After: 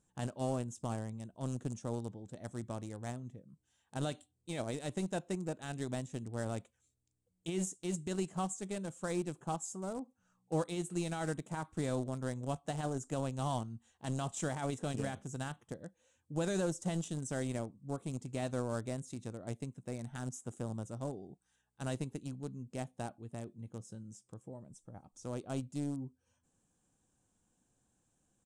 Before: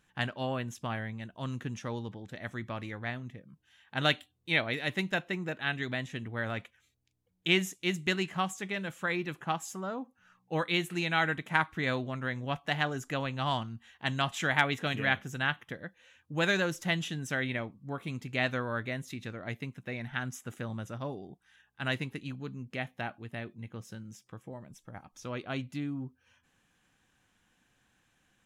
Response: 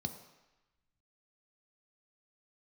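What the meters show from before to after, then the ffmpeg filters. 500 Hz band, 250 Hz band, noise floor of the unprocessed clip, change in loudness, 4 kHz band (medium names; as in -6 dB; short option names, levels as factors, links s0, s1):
-3.0 dB, -2.5 dB, -73 dBFS, -6.5 dB, -15.0 dB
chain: -filter_complex "[0:a]asplit=2[s0][s1];[s1]aeval=exprs='val(0)*gte(abs(val(0)),0.0316)':c=same,volume=0.596[s2];[s0][s2]amix=inputs=2:normalize=0,alimiter=limit=0.141:level=0:latency=1:release=36,firequalizer=gain_entry='entry(500,0);entry(1900,-18);entry(8500,9);entry(13000,-20)':delay=0.05:min_phase=1,volume=0.668"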